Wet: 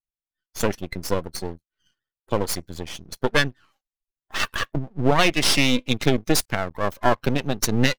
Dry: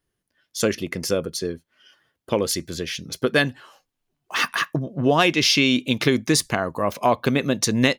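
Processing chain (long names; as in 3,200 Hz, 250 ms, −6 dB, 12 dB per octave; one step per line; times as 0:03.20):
spectral dynamics exaggerated over time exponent 1.5
half-wave rectification
level +5 dB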